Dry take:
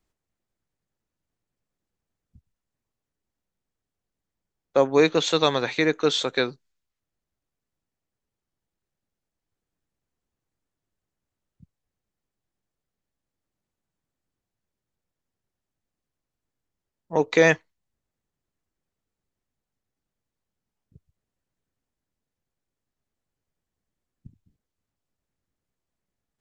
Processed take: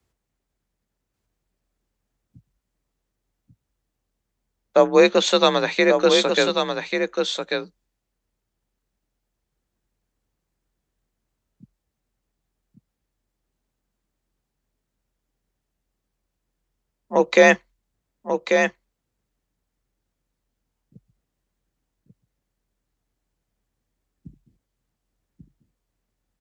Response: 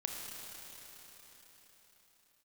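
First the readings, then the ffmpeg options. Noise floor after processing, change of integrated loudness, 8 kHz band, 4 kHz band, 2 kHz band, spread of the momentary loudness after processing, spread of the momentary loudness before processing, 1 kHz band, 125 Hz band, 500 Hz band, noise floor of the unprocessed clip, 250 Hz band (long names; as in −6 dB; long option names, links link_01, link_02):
−80 dBFS, +3.0 dB, +5.0 dB, +5.0 dB, +5.0 dB, 12 LU, 9 LU, +6.0 dB, −1.0 dB, +5.5 dB, below −85 dBFS, +3.5 dB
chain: -af "afreqshift=42,aecho=1:1:1140:0.531,volume=4dB"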